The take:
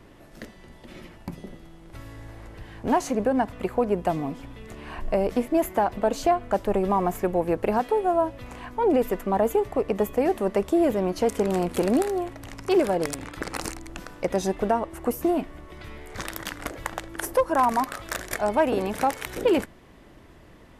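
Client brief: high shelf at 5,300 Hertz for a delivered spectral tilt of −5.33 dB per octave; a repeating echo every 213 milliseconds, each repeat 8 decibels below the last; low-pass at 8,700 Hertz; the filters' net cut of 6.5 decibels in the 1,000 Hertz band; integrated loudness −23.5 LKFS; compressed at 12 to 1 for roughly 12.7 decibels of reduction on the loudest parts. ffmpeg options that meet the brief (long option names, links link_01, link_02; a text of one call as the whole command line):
ffmpeg -i in.wav -af "lowpass=8700,equalizer=frequency=1000:width_type=o:gain=-9,highshelf=frequency=5300:gain=-9,acompressor=threshold=-31dB:ratio=12,aecho=1:1:213|426|639|852|1065:0.398|0.159|0.0637|0.0255|0.0102,volume=13.5dB" out.wav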